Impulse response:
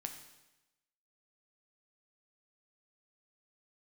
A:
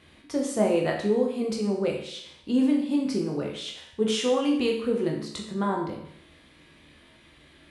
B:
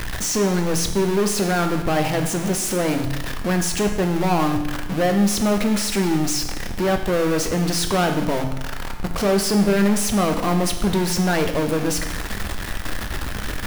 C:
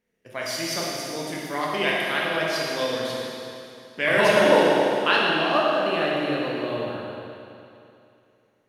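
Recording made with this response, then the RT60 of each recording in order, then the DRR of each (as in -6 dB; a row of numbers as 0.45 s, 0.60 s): B; 0.70 s, 1.0 s, 2.7 s; -0.5 dB, 4.5 dB, -4.5 dB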